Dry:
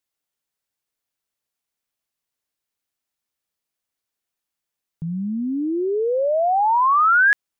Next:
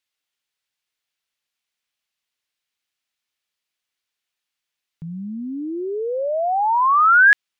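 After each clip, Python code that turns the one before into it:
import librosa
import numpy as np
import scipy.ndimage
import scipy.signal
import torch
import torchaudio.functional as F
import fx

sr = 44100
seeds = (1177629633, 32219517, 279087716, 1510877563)

y = fx.peak_eq(x, sr, hz=2900.0, db=12.5, octaves=2.5)
y = y * 10.0 ** (-5.0 / 20.0)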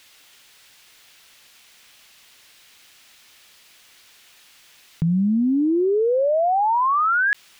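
y = fx.env_flatten(x, sr, amount_pct=100)
y = y * 10.0 ** (-9.0 / 20.0)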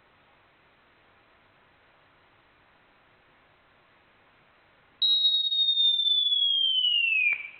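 y = fx.rev_double_slope(x, sr, seeds[0], early_s=0.65, late_s=1.9, knee_db=-20, drr_db=5.5)
y = fx.freq_invert(y, sr, carrier_hz=4000)
y = y * 10.0 ** (-6.5 / 20.0)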